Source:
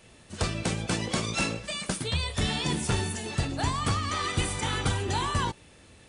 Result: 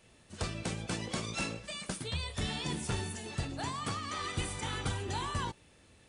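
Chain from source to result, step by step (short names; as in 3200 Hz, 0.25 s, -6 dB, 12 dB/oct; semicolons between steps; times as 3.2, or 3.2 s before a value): 3.62–4.18 HPF 130 Hz; gain -7.5 dB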